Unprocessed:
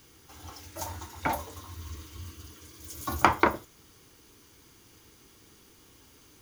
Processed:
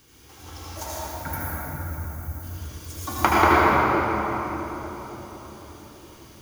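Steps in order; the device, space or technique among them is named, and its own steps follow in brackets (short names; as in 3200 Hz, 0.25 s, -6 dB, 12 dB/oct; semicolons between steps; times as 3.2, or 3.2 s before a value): 0.95–2.43 EQ curve 170 Hz 0 dB, 260 Hz -7 dB, 930 Hz -15 dB, 1600 Hz -2 dB, 3100 Hz -23 dB, 14000 Hz +8 dB; cathedral (reverb RT60 4.4 s, pre-delay 71 ms, DRR -8 dB)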